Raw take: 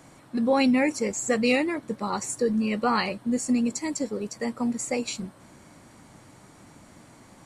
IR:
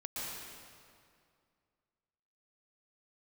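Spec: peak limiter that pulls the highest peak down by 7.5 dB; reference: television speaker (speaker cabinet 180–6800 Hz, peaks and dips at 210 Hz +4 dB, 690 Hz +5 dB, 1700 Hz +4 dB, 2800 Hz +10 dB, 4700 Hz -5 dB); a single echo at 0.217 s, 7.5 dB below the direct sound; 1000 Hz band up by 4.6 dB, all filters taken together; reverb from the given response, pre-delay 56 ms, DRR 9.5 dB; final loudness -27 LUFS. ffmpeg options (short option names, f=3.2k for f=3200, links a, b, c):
-filter_complex "[0:a]equalizer=f=1k:t=o:g=3.5,alimiter=limit=-18.5dB:level=0:latency=1,aecho=1:1:217:0.422,asplit=2[a][b];[1:a]atrim=start_sample=2205,adelay=56[c];[b][c]afir=irnorm=-1:irlink=0,volume=-11.5dB[d];[a][d]amix=inputs=2:normalize=0,highpass=f=180:w=0.5412,highpass=f=180:w=1.3066,equalizer=f=210:t=q:w=4:g=4,equalizer=f=690:t=q:w=4:g=5,equalizer=f=1.7k:t=q:w=4:g=4,equalizer=f=2.8k:t=q:w=4:g=10,equalizer=f=4.7k:t=q:w=4:g=-5,lowpass=f=6.8k:w=0.5412,lowpass=f=6.8k:w=1.3066,volume=-2dB"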